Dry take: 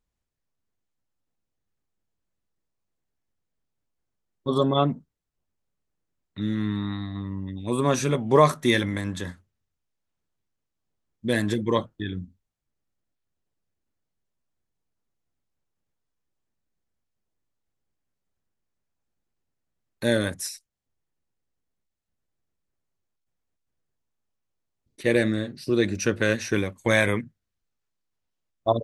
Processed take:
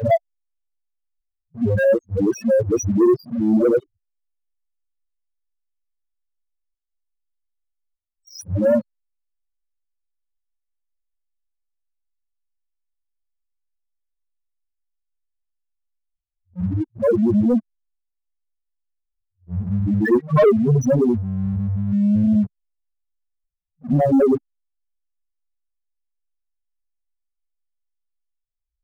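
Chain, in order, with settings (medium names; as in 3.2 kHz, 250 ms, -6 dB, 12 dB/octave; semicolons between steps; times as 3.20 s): reverse the whole clip; in parallel at -7.5 dB: overload inside the chain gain 22 dB; on the sum: loudest bins only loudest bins 2; waveshaping leveller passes 2; peaking EQ 3.6 kHz -6 dB 2.3 oct; trim +4.5 dB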